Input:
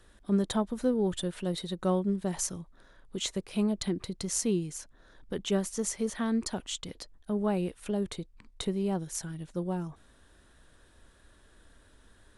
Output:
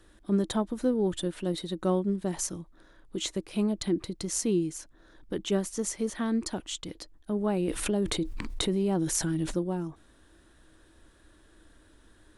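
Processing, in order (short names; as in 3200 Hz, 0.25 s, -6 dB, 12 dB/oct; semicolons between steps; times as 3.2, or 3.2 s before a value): bell 320 Hz +12 dB 0.22 oct; 7.68–9.59 fast leveller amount 70%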